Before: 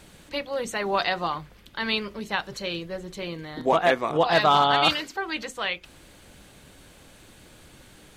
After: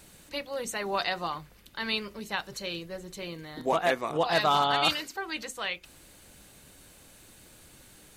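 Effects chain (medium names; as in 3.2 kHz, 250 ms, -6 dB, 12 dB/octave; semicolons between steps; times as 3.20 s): treble shelf 6.6 kHz +11.5 dB; band-stop 3.3 kHz, Q 21; trim -5.5 dB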